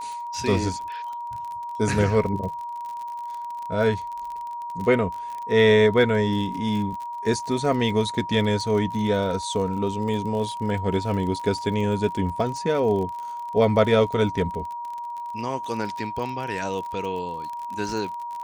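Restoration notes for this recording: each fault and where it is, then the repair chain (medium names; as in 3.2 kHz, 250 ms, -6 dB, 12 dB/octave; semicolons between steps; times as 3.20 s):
crackle 36 per s -31 dBFS
whine 950 Hz -30 dBFS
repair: de-click; band-stop 950 Hz, Q 30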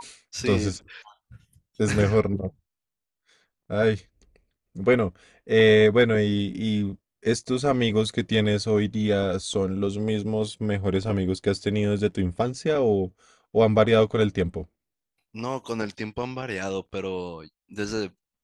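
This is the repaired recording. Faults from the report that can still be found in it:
nothing left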